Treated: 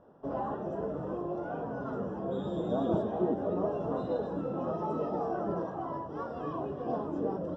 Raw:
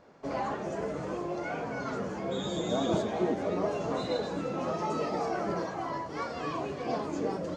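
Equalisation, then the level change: running mean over 20 samples; 0.0 dB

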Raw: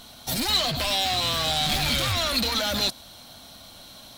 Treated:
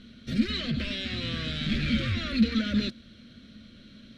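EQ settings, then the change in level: Butterworth band-stop 850 Hz, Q 0.72; LPF 2100 Hz 12 dB/oct; bell 220 Hz +13.5 dB 0.23 oct; 0.0 dB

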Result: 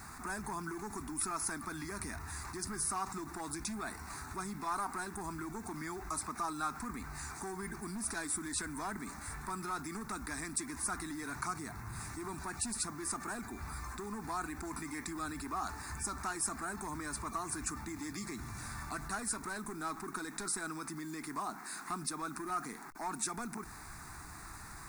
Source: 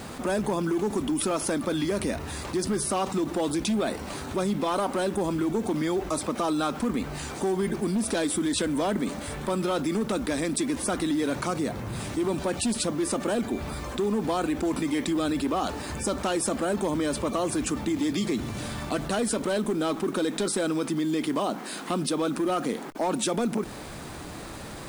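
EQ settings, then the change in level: bell 220 Hz -10.5 dB 2.4 oct; fixed phaser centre 1300 Hz, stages 4; -3.5 dB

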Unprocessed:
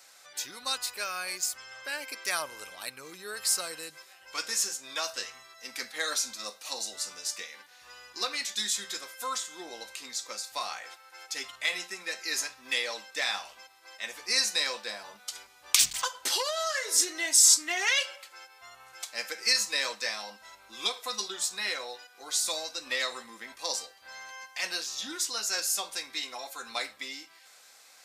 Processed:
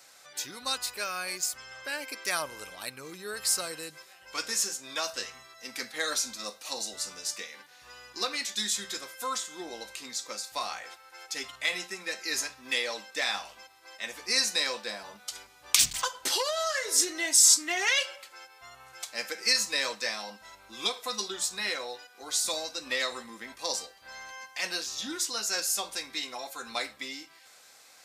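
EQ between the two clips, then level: low shelf 340 Hz +8.5 dB; 0.0 dB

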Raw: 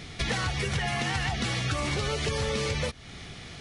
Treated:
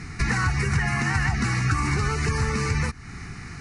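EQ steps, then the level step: Bessel low-pass 7700 Hz; fixed phaser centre 1400 Hz, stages 4; +8.0 dB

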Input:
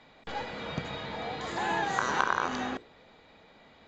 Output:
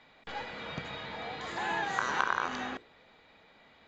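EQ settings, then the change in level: bell 2100 Hz +5.5 dB 2.4 oct; -6.0 dB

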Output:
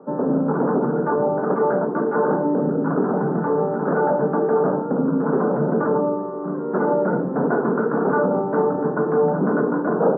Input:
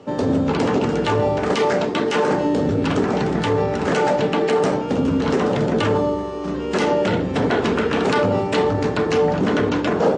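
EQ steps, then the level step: Chebyshev band-pass 140–1500 Hz, order 5; air absorption 94 m; 0.0 dB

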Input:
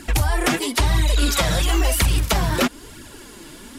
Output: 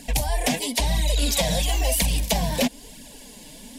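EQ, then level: fixed phaser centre 350 Hz, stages 6; 0.0 dB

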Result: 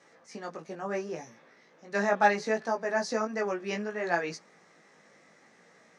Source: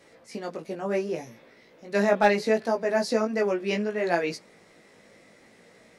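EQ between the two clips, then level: speaker cabinet 140–8900 Hz, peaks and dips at 160 Hz +5 dB, 820 Hz +6 dB, 1200 Hz +8 dB, 1700 Hz +7 dB, 6100 Hz +8 dB; -7.0 dB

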